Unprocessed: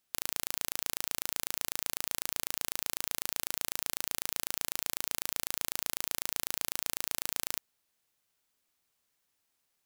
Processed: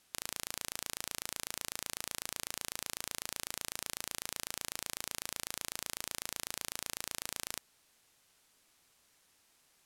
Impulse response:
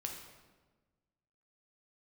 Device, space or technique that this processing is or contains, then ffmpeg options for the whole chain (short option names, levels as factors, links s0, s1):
overflowing digital effects unit: -af "aeval=exprs='(mod(5.96*val(0)+1,2)-1)/5.96':c=same,lowpass=12000,volume=3.76"